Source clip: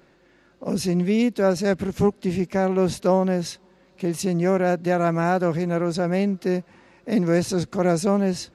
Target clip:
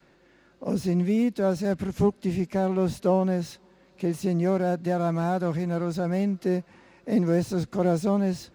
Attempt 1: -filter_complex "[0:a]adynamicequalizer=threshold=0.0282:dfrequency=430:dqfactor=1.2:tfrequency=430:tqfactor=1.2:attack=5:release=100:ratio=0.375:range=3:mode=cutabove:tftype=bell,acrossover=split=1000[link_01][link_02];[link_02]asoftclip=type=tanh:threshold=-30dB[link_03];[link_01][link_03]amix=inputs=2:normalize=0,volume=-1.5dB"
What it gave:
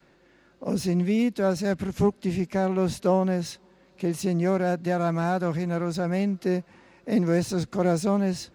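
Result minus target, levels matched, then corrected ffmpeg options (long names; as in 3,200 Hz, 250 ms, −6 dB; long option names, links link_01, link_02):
soft clipping: distortion −7 dB
-filter_complex "[0:a]adynamicequalizer=threshold=0.0282:dfrequency=430:dqfactor=1.2:tfrequency=430:tqfactor=1.2:attack=5:release=100:ratio=0.375:range=3:mode=cutabove:tftype=bell,acrossover=split=1000[link_01][link_02];[link_02]asoftclip=type=tanh:threshold=-39.5dB[link_03];[link_01][link_03]amix=inputs=2:normalize=0,volume=-1.5dB"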